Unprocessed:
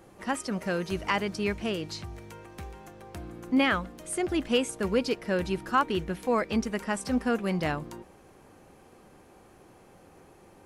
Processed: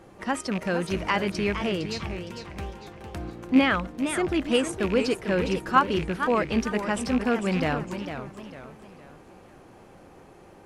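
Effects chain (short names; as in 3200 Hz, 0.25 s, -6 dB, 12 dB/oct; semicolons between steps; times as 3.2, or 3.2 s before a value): rattling part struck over -32 dBFS, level -26 dBFS; high shelf 8000 Hz -10 dB; in parallel at -2 dB: level quantiser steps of 21 dB; on the sum: warbling echo 0.456 s, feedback 39%, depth 203 cents, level -9 dB; gain +1.5 dB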